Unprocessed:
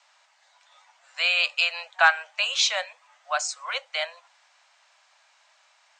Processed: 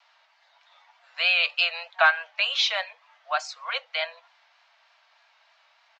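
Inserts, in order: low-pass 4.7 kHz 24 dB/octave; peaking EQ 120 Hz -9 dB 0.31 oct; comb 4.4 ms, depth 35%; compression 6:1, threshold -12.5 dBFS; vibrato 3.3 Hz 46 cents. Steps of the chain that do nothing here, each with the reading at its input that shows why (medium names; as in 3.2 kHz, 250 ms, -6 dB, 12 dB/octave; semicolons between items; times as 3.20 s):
peaking EQ 120 Hz: input has nothing below 450 Hz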